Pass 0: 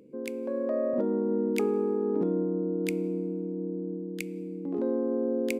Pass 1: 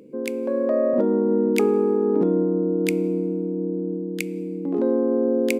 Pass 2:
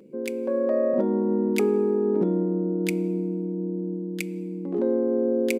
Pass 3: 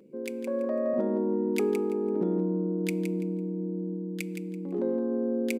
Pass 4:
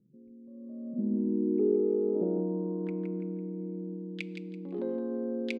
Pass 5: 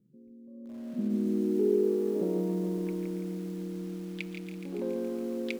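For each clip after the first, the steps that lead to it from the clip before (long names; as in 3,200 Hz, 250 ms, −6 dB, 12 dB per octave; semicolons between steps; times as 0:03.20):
parametric band 61 Hz −8 dB 1.5 octaves; level +8 dB
comb filter 5.3 ms, depth 45%; level −3.5 dB
repeating echo 167 ms, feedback 24%, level −8 dB; level −5 dB
low-pass filter sweep 130 Hz → 3,800 Hz, 0:00.49–0:04.32; level −5 dB
feedback echo at a low word length 140 ms, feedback 80%, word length 8 bits, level −9.5 dB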